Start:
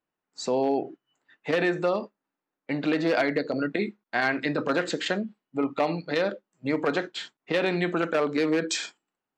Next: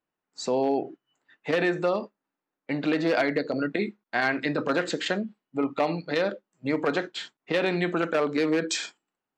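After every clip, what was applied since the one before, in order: nothing audible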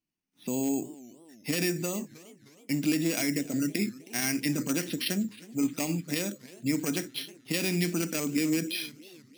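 careless resampling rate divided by 6×, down filtered, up hold; band shelf 840 Hz -15.5 dB 2.4 oct; warbling echo 0.312 s, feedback 52%, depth 208 cents, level -20 dB; gain +2 dB

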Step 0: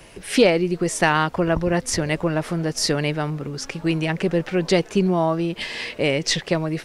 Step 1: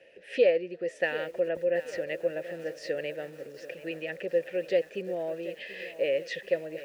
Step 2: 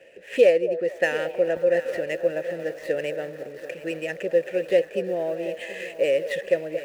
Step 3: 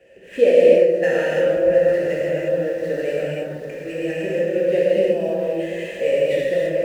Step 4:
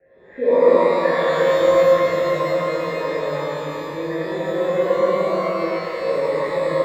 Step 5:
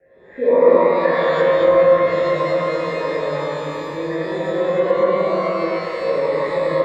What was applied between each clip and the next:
vowel filter e; lo-fi delay 0.734 s, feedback 55%, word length 8-bit, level -14 dB
median filter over 9 samples; on a send: delay with a stepping band-pass 0.226 s, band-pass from 630 Hz, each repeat 0.7 oct, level -9.5 dB; on the sum: gain +6 dB
low shelf 280 Hz +11.5 dB; non-linear reverb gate 0.37 s flat, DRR -7 dB; gain -6 dB
steep low-pass 2200 Hz 72 dB/oct; shimmer reverb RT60 2 s, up +12 st, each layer -8 dB, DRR -8 dB; gain -8.5 dB
treble ducked by the level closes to 2500 Hz, closed at -11.5 dBFS; gain +1.5 dB

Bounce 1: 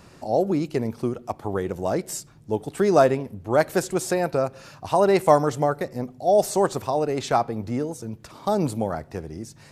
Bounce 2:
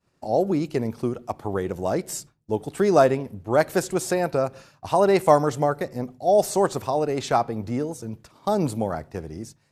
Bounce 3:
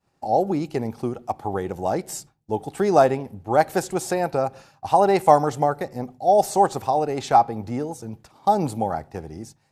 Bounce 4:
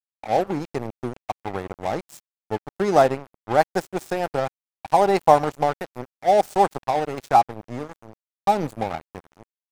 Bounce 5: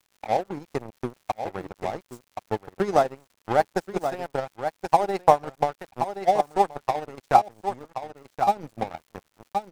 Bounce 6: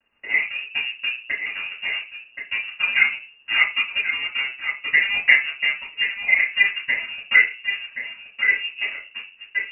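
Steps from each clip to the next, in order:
expander -36 dBFS
bell 800 Hz +12.5 dB 0.2 oct; gain -1 dB
crossover distortion -29 dBFS; gain +1 dB
echo 1.075 s -7.5 dB; transient shaper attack +9 dB, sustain -10 dB; crackle 150/s -38 dBFS; gain -8.5 dB
reverb RT60 0.30 s, pre-delay 3 ms, DRR -8.5 dB; inverted band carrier 2800 Hz; gain -10 dB

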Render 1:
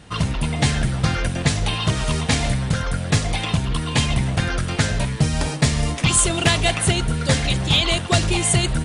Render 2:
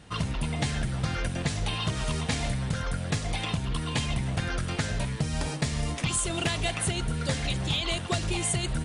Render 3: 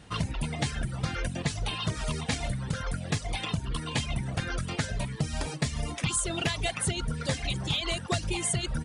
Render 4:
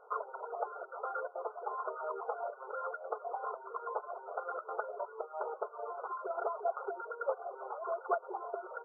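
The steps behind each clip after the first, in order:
compressor, threshold -18 dBFS, peak gain reduction 7 dB; gain -6 dB
reverb removal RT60 0.95 s
brick-wall FIR band-pass 380–1500 Hz; gain +1.5 dB

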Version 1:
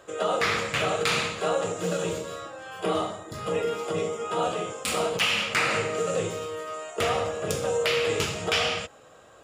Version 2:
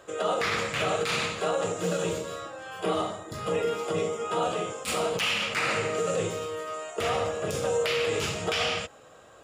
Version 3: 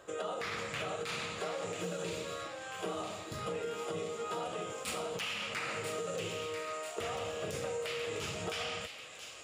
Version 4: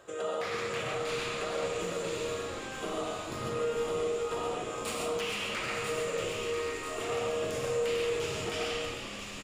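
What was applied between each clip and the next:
limiter -17.5 dBFS, peak gain reduction 9.5 dB
compressor, threshold -31 dBFS, peak gain reduction 8 dB; thin delay 0.991 s, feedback 58%, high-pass 2100 Hz, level -5.5 dB; gain -4 dB
frequency-shifting echo 0.449 s, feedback 59%, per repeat -89 Hz, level -8.5 dB; non-linear reverb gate 0.16 s rising, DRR 1 dB

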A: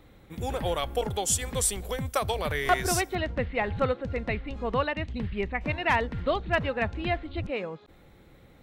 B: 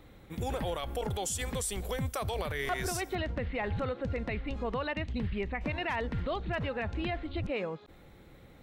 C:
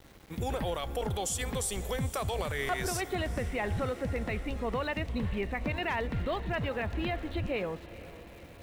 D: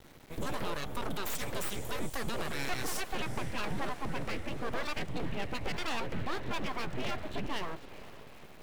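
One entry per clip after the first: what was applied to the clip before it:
limiter -24.5 dBFS, peak gain reduction 10.5 dB
sample gate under -52 dBFS; diffused feedback echo 0.463 s, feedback 64%, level -16 dB; gain +1 dB
full-wave rectifier

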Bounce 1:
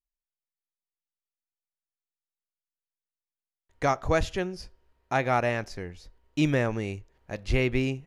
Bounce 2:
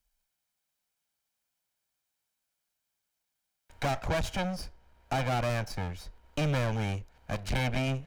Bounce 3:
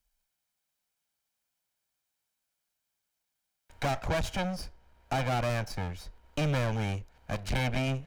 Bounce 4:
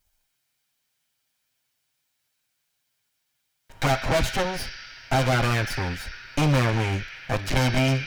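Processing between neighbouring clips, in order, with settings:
minimum comb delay 1.3 ms; soft clip -27.5 dBFS, distortion -8 dB; three-band squash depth 40%; gain +2.5 dB
nothing audible
minimum comb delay 7.6 ms; on a send at -2 dB: Chebyshev band-pass 1400–5900 Hz, order 5 + reverb RT60 3.9 s, pre-delay 26 ms; on the sum: gain +9 dB

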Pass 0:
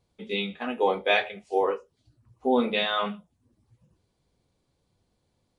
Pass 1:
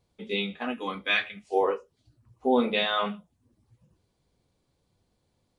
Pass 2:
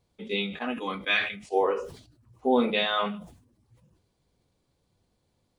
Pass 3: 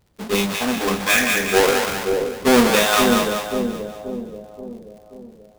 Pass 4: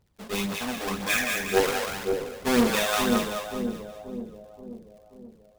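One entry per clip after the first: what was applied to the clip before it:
spectral gain 0.74–1.45, 340–1000 Hz -14 dB
sustainer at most 93 dB/s
half-waves squared off; crackle 38/s -44 dBFS; split-band echo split 610 Hz, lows 0.531 s, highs 0.192 s, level -3.5 dB; gain +4.5 dB
phaser 1.9 Hz, delay 1.9 ms, feedback 41%; gain -9 dB

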